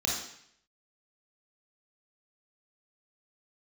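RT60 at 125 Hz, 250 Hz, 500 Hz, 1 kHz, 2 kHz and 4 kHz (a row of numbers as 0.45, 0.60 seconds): 0.75, 0.65, 0.65, 0.70, 0.75, 0.70 seconds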